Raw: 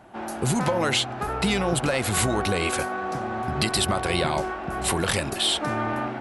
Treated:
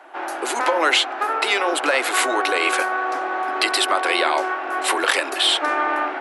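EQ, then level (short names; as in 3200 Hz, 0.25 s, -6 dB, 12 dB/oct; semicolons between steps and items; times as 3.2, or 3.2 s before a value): steep high-pass 280 Hz 72 dB/oct; bell 1600 Hz +10.5 dB 2.8 oct; -1.0 dB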